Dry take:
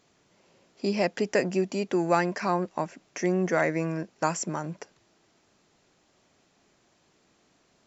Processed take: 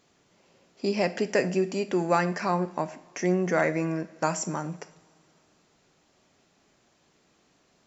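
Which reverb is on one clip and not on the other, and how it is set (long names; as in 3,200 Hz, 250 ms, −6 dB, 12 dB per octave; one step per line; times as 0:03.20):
coupled-rooms reverb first 0.53 s, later 2.9 s, from −20 dB, DRR 10.5 dB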